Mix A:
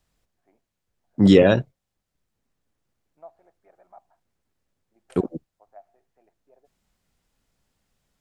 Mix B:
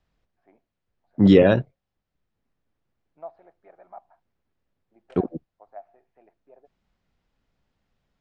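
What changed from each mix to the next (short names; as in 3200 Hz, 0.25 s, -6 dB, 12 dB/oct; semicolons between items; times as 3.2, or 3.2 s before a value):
first voice +6.0 dB; second voice: add air absorption 170 m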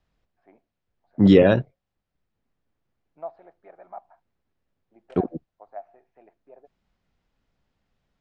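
first voice +3.5 dB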